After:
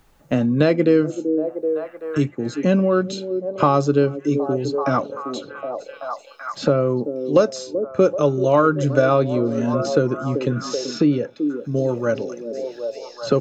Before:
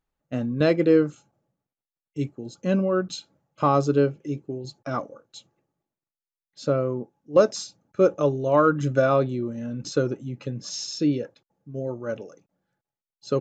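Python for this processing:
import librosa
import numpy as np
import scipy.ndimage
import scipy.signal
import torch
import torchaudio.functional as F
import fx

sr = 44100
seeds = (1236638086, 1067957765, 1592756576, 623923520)

y = fx.echo_stepped(x, sr, ms=383, hz=340.0, octaves=0.7, feedback_pct=70, wet_db=-10.5)
y = fx.band_squash(y, sr, depth_pct=70)
y = y * librosa.db_to_amplitude(5.0)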